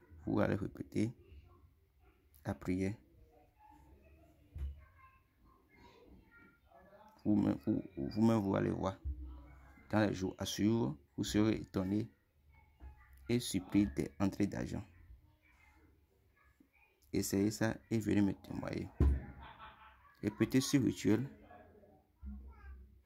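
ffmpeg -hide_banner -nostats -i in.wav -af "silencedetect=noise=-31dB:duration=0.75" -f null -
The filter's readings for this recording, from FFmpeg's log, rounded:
silence_start: 1.05
silence_end: 2.48 | silence_duration: 1.43
silence_start: 2.89
silence_end: 7.26 | silence_duration: 4.37
silence_start: 8.89
silence_end: 9.93 | silence_duration: 1.04
silence_start: 12.01
silence_end: 13.30 | silence_duration: 1.29
silence_start: 14.75
silence_end: 17.15 | silence_duration: 2.40
silence_start: 19.14
silence_end: 20.24 | silence_duration: 1.09
silence_start: 21.21
silence_end: 23.06 | silence_duration: 1.85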